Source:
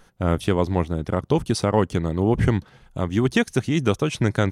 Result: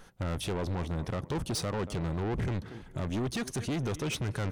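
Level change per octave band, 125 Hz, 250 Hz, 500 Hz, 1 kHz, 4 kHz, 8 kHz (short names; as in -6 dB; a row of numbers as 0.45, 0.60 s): -10.0, -12.5, -13.0, -12.0, -6.5, -4.0 dB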